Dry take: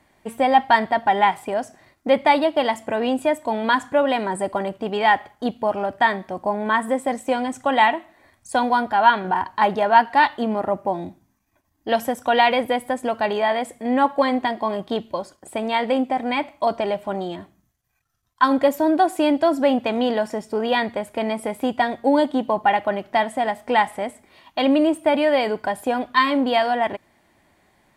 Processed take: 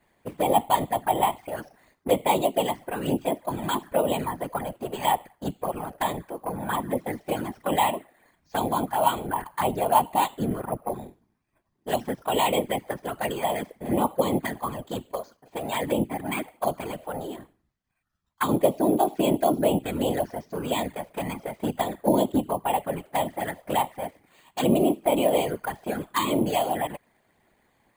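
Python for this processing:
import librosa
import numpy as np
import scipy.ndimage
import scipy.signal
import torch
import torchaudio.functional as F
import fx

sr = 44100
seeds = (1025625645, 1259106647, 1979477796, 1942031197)

y = fx.env_flanger(x, sr, rest_ms=10.8, full_db=-16.0)
y = fx.whisperise(y, sr, seeds[0])
y = np.repeat(scipy.signal.resample_poly(y, 1, 4), 4)[:len(y)]
y = F.gain(torch.from_numpy(y), -3.0).numpy()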